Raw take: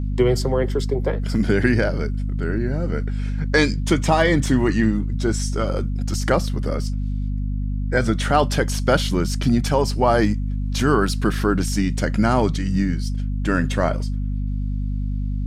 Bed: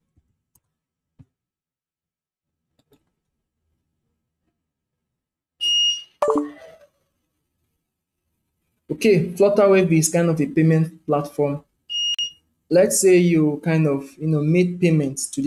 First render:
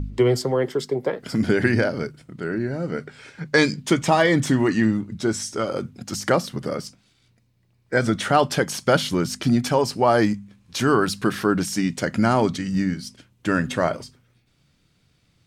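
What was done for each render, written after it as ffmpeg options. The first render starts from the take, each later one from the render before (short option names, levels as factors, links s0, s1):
-af "bandreject=f=50:t=h:w=4,bandreject=f=100:t=h:w=4,bandreject=f=150:t=h:w=4,bandreject=f=200:t=h:w=4,bandreject=f=250:t=h:w=4"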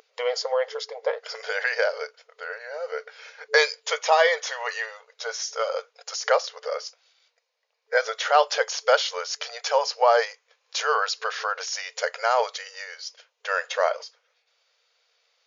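-af "afftfilt=real='re*between(b*sr/4096,440,7100)':imag='im*between(b*sr/4096,440,7100)':win_size=4096:overlap=0.75,equalizer=f=4900:t=o:w=0.44:g=2.5"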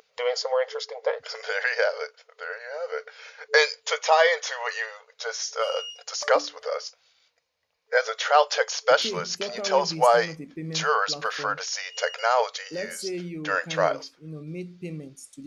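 -filter_complex "[1:a]volume=0.119[s0];[0:a][s0]amix=inputs=2:normalize=0"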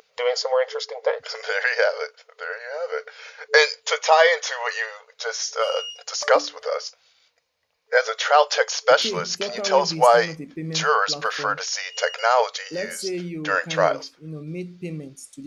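-af "volume=1.5,alimiter=limit=0.708:level=0:latency=1"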